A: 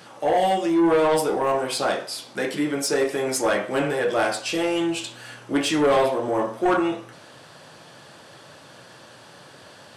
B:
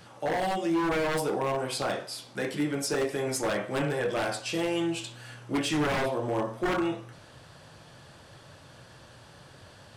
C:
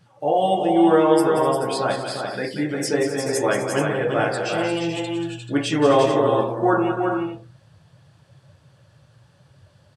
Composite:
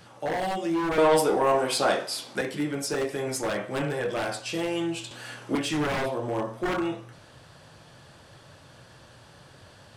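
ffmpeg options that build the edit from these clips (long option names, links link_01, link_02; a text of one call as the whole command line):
ffmpeg -i take0.wav -i take1.wav -filter_complex "[0:a]asplit=2[link_01][link_02];[1:a]asplit=3[link_03][link_04][link_05];[link_03]atrim=end=0.982[link_06];[link_01]atrim=start=0.978:end=2.412[link_07];[link_04]atrim=start=2.408:end=5.112[link_08];[link_02]atrim=start=5.108:end=5.552[link_09];[link_05]atrim=start=5.548[link_10];[link_06][link_07]acrossfade=duration=0.004:curve1=hsin:curve2=hsin[link_11];[link_11][link_08]acrossfade=duration=0.004:curve1=hsin:curve2=hsin[link_12];[link_12][link_09]acrossfade=duration=0.004:curve1=hsin:curve2=hsin[link_13];[link_13][link_10]acrossfade=duration=0.004:curve1=hsin:curve2=hsin" out.wav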